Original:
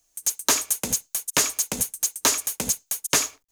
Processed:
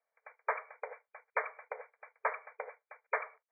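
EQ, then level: brick-wall FIR band-pass 430–2400 Hz; distance through air 250 m; -4.0 dB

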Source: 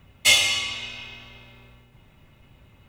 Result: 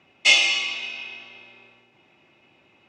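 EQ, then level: cabinet simulation 260–6700 Hz, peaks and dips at 340 Hz +8 dB, 750 Hz +6 dB, 2.5 kHz +9 dB, 5.3 kHz +4 dB; -2.5 dB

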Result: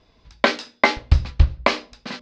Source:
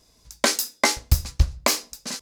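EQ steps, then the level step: low-pass 3.6 kHz 24 dB/octave; hum notches 60/120/180/240/300/360/420/480/540/600 Hz; +5.0 dB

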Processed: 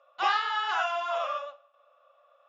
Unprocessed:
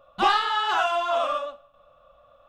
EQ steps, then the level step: high-pass 450 Hz 24 dB/octave; rippled Chebyshev low-pass 7.2 kHz, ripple 6 dB; -1.5 dB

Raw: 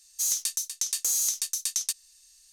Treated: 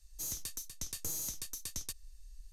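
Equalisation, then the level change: tilt EQ -4.5 dB/octave; bass shelf 240 Hz +10 dB; peaking EQ 13 kHz +13.5 dB 0.57 oct; -4.0 dB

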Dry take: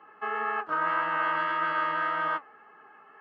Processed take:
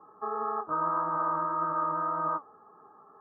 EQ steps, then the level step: elliptic low-pass 1.2 kHz, stop band 50 dB; peaking EQ 240 Hz -3.5 dB 0.7 oct; peaking EQ 730 Hz -9 dB 2.7 oct; +9.0 dB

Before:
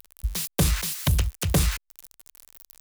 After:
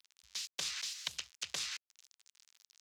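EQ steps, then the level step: band-pass filter 7 kHz, Q 1.3; distance through air 220 m; tilt EQ +2 dB/octave; +3.0 dB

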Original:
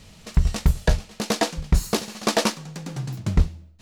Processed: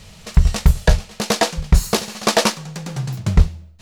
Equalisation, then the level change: peaking EQ 280 Hz -9 dB 0.52 oct; +6.0 dB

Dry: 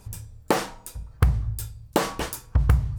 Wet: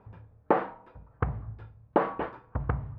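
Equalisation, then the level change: high-pass 450 Hz 6 dB/octave; low-pass 1.4 kHz 12 dB/octave; distance through air 390 m; +3.0 dB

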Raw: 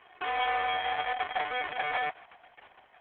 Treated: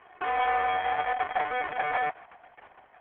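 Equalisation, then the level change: low-pass 1.9 kHz 12 dB/octave; +4.0 dB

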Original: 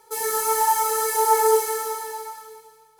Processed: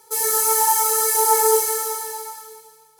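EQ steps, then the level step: high-pass 140 Hz 6 dB/octave; tone controls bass +5 dB, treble +8 dB; 0.0 dB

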